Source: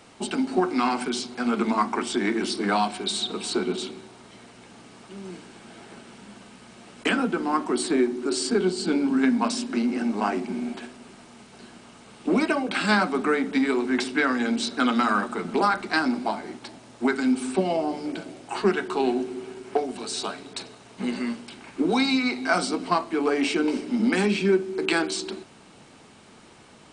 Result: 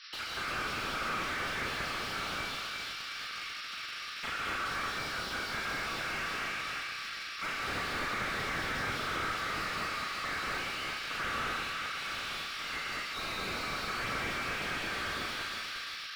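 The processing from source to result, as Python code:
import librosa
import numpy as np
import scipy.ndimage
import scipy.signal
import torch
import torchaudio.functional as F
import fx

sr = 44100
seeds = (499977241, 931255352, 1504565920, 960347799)

p1 = fx.rotary_switch(x, sr, hz=6.7, then_hz=0.65, switch_at_s=15.63)
p2 = fx.over_compress(p1, sr, threshold_db=-28.0, ratio=-1.0)
p3 = p1 + (p2 * 10.0 ** (1.0 / 20.0))
p4 = fx.spec_gate(p3, sr, threshold_db=-15, keep='weak')
p5 = fx.stretch_grains(p4, sr, factor=0.6, grain_ms=47.0)
p6 = fx.quant_dither(p5, sr, seeds[0], bits=8, dither='triangular')
p7 = fx.brickwall_bandpass(p6, sr, low_hz=1100.0, high_hz=5800.0)
p8 = fx.doubler(p7, sr, ms=37.0, db=-4.5)
p9 = p8 + fx.echo_feedback(p8, sr, ms=354, feedback_pct=48, wet_db=-8, dry=0)
p10 = fx.rev_gated(p9, sr, seeds[1], gate_ms=270, shape='rising', drr_db=-3.0)
p11 = fx.slew_limit(p10, sr, full_power_hz=33.0)
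y = p11 * 10.0 ** (1.5 / 20.0)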